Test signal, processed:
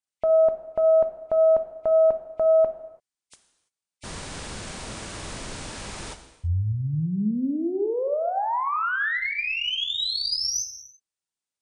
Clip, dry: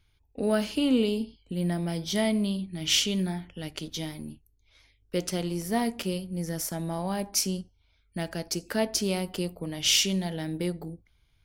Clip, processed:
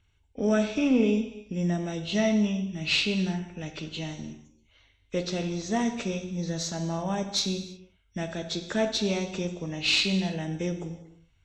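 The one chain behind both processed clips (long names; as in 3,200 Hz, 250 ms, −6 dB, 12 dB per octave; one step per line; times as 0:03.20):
hearing-aid frequency compression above 2,000 Hz 1.5 to 1
harmonic generator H 2 −17 dB, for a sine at −11.5 dBFS
reverb whose tail is shaped and stops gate 360 ms falling, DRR 7 dB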